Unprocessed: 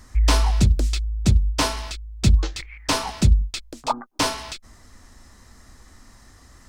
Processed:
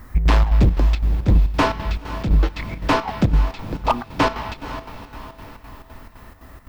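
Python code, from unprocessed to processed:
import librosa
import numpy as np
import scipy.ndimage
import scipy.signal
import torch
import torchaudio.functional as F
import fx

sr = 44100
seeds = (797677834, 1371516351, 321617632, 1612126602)

p1 = scipy.signal.sosfilt(scipy.signal.butter(2, 2200.0, 'lowpass', fs=sr, output='sos'), x)
p2 = np.clip(p1, -10.0 ** (-17.5 / 20.0), 10.0 ** (-17.5 / 20.0))
p3 = p2 + fx.echo_diffused(p2, sr, ms=493, feedback_pct=53, wet_db=-12, dry=0)
p4 = fx.dmg_noise_colour(p3, sr, seeds[0], colour='violet', level_db=-64.0)
p5 = fx.chopper(p4, sr, hz=3.9, depth_pct=60, duty_pct=70)
y = p5 * 10.0 ** (7.0 / 20.0)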